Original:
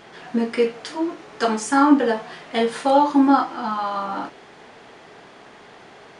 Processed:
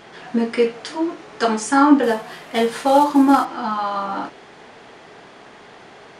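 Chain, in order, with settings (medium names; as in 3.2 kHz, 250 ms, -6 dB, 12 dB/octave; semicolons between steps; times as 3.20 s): 2.03–3.45 s: CVSD coder 64 kbps; trim +2 dB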